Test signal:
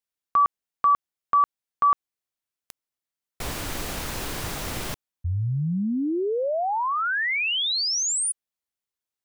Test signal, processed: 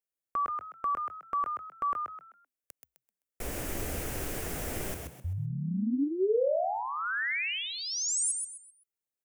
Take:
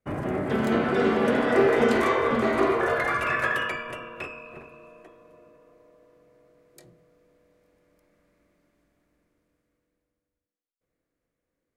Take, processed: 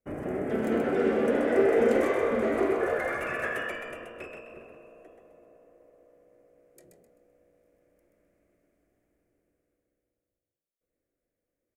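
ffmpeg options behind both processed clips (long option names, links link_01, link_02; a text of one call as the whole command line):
ffmpeg -i in.wav -filter_complex "[0:a]equalizer=frequency=125:width_type=o:width=1:gain=-8,equalizer=frequency=500:width_type=o:width=1:gain=3,equalizer=frequency=1000:width_type=o:width=1:gain=-9,equalizer=frequency=4000:width_type=o:width=1:gain=-12,asplit=5[link_01][link_02][link_03][link_04][link_05];[link_02]adelay=129,afreqshift=61,volume=-5dB[link_06];[link_03]adelay=258,afreqshift=122,volume=-15.2dB[link_07];[link_04]adelay=387,afreqshift=183,volume=-25.3dB[link_08];[link_05]adelay=516,afreqshift=244,volume=-35.5dB[link_09];[link_01][link_06][link_07][link_08][link_09]amix=inputs=5:normalize=0,volume=-3dB" out.wav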